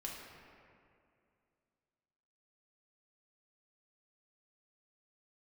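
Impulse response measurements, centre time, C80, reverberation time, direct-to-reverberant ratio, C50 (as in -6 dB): 99 ms, 2.5 dB, 2.4 s, -3.0 dB, 1.0 dB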